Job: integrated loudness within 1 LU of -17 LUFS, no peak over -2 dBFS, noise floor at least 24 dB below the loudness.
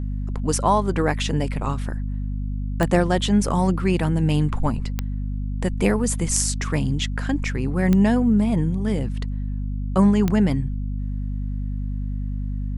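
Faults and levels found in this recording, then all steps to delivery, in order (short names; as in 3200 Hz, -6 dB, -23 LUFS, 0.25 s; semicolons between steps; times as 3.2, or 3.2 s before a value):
clicks 4; hum 50 Hz; harmonics up to 250 Hz; hum level -24 dBFS; loudness -23.0 LUFS; peak -3.0 dBFS; loudness target -17.0 LUFS
-> de-click; de-hum 50 Hz, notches 5; gain +6 dB; limiter -2 dBFS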